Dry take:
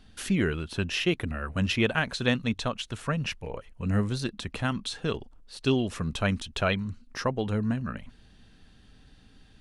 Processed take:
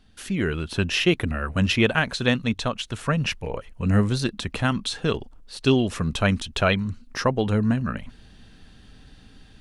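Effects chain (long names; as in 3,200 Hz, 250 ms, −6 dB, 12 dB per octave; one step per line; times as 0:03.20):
automatic gain control gain up to 9.5 dB
level −3 dB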